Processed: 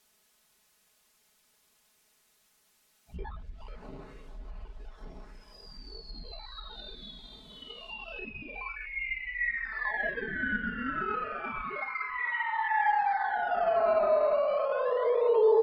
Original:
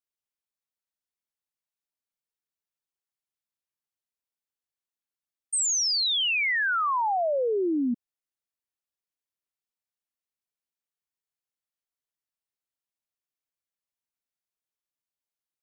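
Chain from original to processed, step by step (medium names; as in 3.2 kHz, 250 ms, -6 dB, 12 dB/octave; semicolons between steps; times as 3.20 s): comb filter that takes the minimum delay 0.48 ms; low-pass that closes with the level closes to 1.1 kHz, closed at -26.5 dBFS; Paulstretch 6.2×, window 0.05 s, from 5.01 s; high-pass 71 Hz 12 dB/octave; bass shelf 350 Hz +10.5 dB; on a send: two-band feedback delay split 560 Hz, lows 163 ms, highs 461 ms, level -8 dB; on the sum: peak limiter -24.5 dBFS, peak gain reduction 11 dB; in parallel at -6 dB: decimation with a swept rate 18×, swing 100% 0.3 Hz; on the sum: resampled via 11.025 kHz; added noise white -70 dBFS; comb 4.7 ms, depth 65%; low-pass that closes with the level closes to 1.8 kHz, closed at -36 dBFS; trim +1.5 dB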